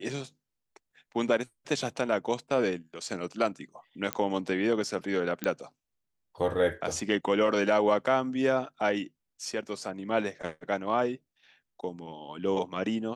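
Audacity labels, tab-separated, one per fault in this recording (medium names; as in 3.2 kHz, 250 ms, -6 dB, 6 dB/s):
4.130000	4.130000	pop -12 dBFS
5.440000	5.440000	pop -15 dBFS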